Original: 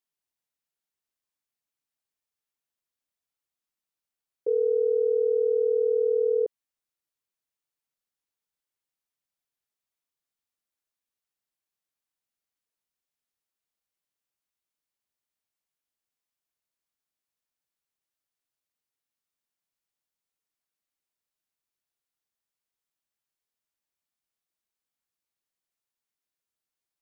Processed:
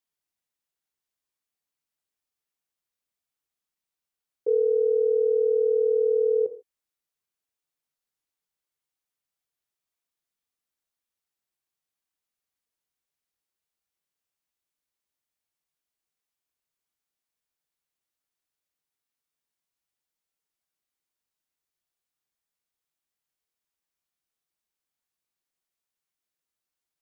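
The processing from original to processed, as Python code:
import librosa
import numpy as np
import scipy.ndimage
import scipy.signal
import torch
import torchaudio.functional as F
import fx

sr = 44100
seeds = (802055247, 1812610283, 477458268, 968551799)

y = fx.rev_gated(x, sr, seeds[0], gate_ms=170, shape='falling', drr_db=7.5)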